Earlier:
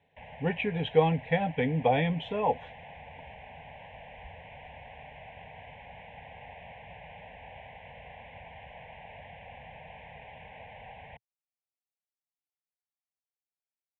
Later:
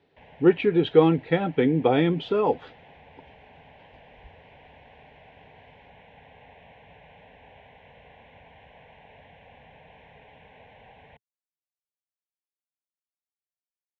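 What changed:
background -5.5 dB; master: remove static phaser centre 1.3 kHz, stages 6

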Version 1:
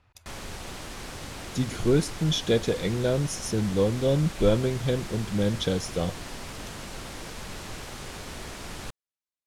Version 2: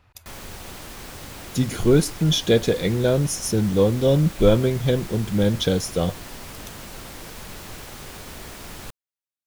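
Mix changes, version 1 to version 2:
speech +5.5 dB; master: remove low-pass 9.5 kHz 12 dB/octave

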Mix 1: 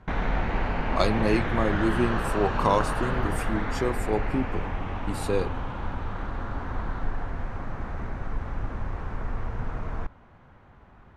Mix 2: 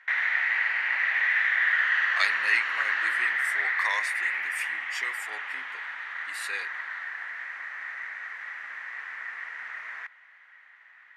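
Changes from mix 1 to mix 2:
speech: entry +1.20 s; master: add resonant high-pass 1.9 kHz, resonance Q 8.3

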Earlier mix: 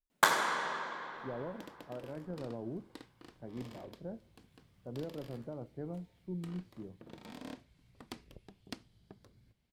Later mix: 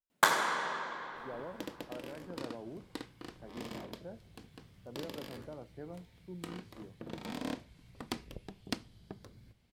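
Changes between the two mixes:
speech: add tilt EQ +3 dB/octave; second sound +4.5 dB; reverb: on, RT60 0.50 s

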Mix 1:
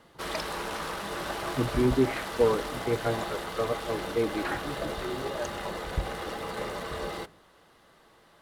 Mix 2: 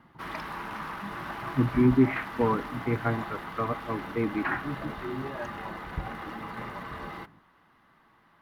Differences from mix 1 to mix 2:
background -6.0 dB; master: add graphic EQ 125/250/500/1000/2000/4000/8000 Hz +4/+7/-9/+7/+5/-4/-12 dB

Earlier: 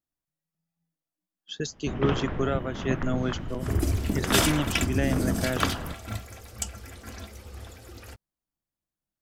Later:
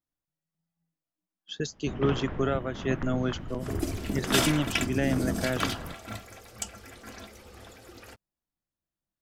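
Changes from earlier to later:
first sound -4.0 dB; second sound: add peaking EQ 69 Hz -12 dB 1.7 oct; master: add peaking EQ 16 kHz -4.5 dB 1.6 oct

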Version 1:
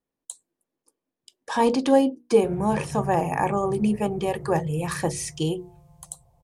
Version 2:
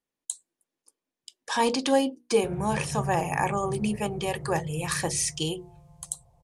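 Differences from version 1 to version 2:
speech: add tilt shelf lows -6 dB, about 1.4 kHz; master: add low-pass 11 kHz 12 dB/octave

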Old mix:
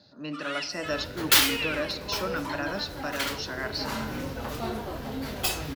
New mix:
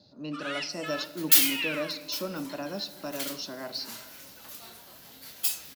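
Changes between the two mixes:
speech: add peaking EQ 1.7 kHz -13 dB 1.1 oct; second sound: add pre-emphasis filter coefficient 0.97

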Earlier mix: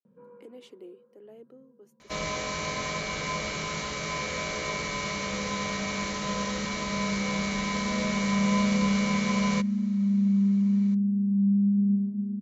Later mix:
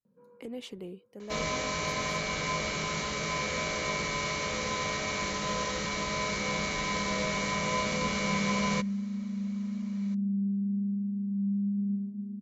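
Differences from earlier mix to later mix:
speech: remove ladder high-pass 280 Hz, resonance 50%; first sound -7.0 dB; second sound: entry -0.80 s

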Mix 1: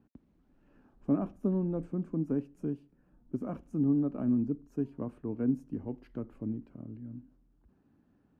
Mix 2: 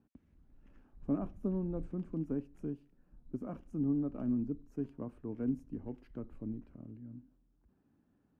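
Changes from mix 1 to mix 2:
speech -5.0 dB; background +9.0 dB

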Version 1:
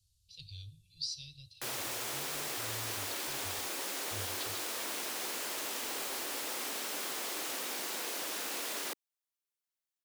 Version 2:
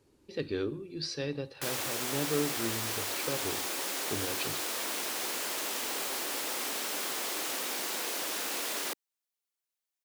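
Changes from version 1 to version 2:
speech: remove inverse Chebyshev band-stop 200–1900 Hz, stop band 40 dB; background +3.5 dB

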